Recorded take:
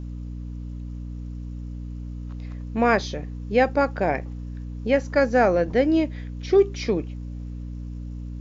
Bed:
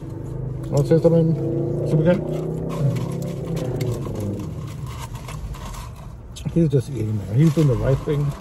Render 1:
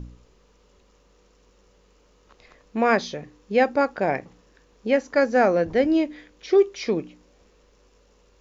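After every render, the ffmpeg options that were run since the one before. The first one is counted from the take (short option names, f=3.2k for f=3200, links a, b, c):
-af "bandreject=f=60:t=h:w=4,bandreject=f=120:t=h:w=4,bandreject=f=180:t=h:w=4,bandreject=f=240:t=h:w=4,bandreject=f=300:t=h:w=4"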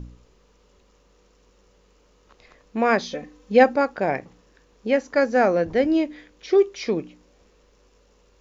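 -filter_complex "[0:a]asettb=1/sr,asplit=3[a][b][c];[a]atrim=end=3.114[d];[b]atrim=start=3.11:end=3.76,asetpts=PTS-STARTPTS,afade=t=in:d=0.004:c=qsin,afade=t=out:st=0.646:d=0.004:c=qsin,aecho=1:1:3.9:0.79,atrim=end_sample=28665[e];[c]atrim=start=3.756[f];[d][e]acrossfade=d=0.004:c1=hsin:c2=qsin[g];[g][f]acrossfade=d=0.004:c1=qsin:c2=hsin"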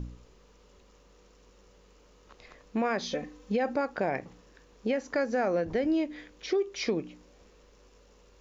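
-af "alimiter=limit=-14dB:level=0:latency=1:release=62,acompressor=threshold=-27dB:ratio=2.5"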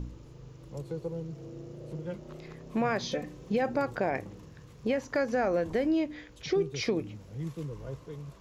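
-filter_complex "[1:a]volume=-21dB[a];[0:a][a]amix=inputs=2:normalize=0"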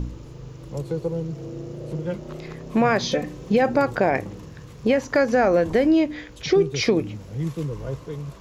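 -af "volume=9.5dB"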